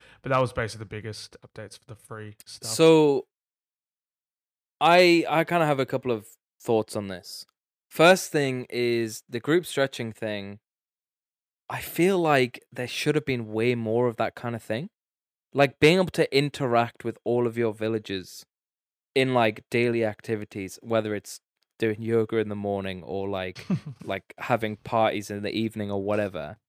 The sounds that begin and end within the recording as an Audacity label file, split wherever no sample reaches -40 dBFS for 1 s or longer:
4.810000	10.550000	sound